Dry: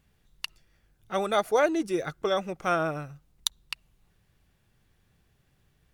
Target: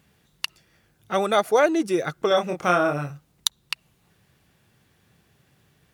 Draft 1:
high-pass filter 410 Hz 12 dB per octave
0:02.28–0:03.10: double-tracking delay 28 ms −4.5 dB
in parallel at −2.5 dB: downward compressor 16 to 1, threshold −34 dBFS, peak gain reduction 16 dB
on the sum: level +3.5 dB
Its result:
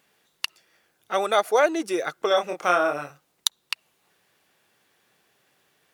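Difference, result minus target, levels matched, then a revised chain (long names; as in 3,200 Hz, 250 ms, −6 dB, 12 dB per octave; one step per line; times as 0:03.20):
125 Hz band −14.0 dB
high-pass filter 110 Hz 12 dB per octave
0:02.28–0:03.10: double-tracking delay 28 ms −4.5 dB
in parallel at −2.5 dB: downward compressor 16 to 1, threshold −34 dBFS, peak gain reduction 17 dB
on the sum: level +3.5 dB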